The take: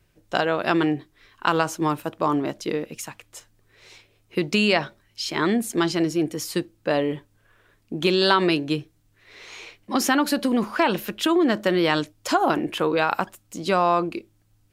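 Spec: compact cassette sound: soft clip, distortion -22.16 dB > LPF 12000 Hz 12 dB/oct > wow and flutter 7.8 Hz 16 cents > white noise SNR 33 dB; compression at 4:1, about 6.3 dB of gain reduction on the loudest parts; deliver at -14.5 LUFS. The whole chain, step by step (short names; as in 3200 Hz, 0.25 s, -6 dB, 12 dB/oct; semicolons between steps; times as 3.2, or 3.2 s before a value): compressor 4:1, threshold -23 dBFS; soft clip -14.5 dBFS; LPF 12000 Hz 12 dB/oct; wow and flutter 7.8 Hz 16 cents; white noise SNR 33 dB; gain +14.5 dB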